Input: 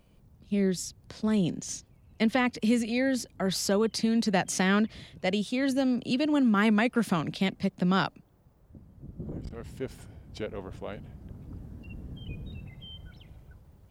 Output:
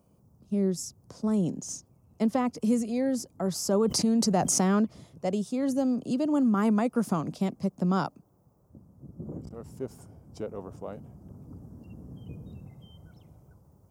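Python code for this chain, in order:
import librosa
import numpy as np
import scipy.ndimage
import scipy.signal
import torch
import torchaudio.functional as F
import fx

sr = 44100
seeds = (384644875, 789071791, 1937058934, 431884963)

y = scipy.signal.sosfilt(scipy.signal.butter(2, 95.0, 'highpass', fs=sr, output='sos'), x)
y = fx.band_shelf(y, sr, hz=2600.0, db=-14.0, octaves=1.7)
y = fx.env_flatten(y, sr, amount_pct=70, at=(3.73, 4.85))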